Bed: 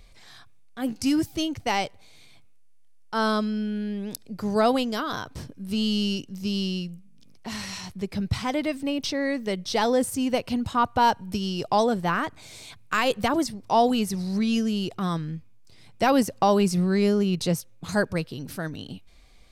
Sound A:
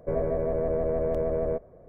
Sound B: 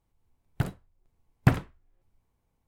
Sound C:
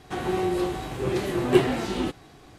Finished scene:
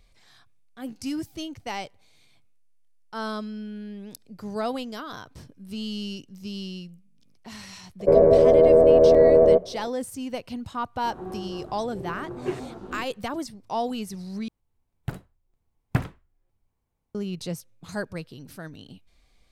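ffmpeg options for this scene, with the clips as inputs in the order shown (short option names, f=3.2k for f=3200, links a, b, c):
-filter_complex "[0:a]volume=-7.5dB[a];[1:a]equalizer=f=470:w=0.45:g=14[b];[3:a]afwtdn=0.0316[c];[a]asplit=2[d][e];[d]atrim=end=14.484[f];[2:a]atrim=end=2.67,asetpts=PTS-STARTPTS,volume=-3.5dB[g];[e]atrim=start=17.146[h];[b]atrim=end=1.88,asetpts=PTS-STARTPTS,volume=-0.5dB,afade=t=in:d=0.004:c=hsin,afade=t=out:st=1.876:d=0.004:c=hsin,adelay=8000[i];[c]atrim=end=2.58,asetpts=PTS-STARTPTS,volume=-10.5dB,afade=t=in:d=0.004:c=hsin,afade=t=out:st=2.576:d=0.004:c=hsin,adelay=10930[j];[f][g]acrossfade=d=0.004:c1=hsin:c2=hsin[k];[k][h]acrossfade=d=0.004:c1=hsin:c2=hsin[l];[l][i][j]amix=inputs=3:normalize=0"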